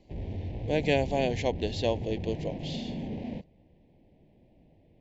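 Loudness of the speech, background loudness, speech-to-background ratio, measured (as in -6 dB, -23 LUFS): -30.5 LUFS, -37.0 LUFS, 6.5 dB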